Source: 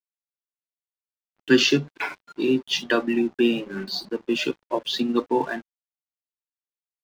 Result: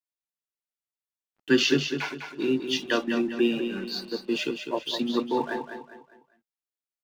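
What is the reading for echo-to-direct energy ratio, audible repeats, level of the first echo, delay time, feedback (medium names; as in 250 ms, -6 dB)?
-7.0 dB, 4, -7.5 dB, 202 ms, 38%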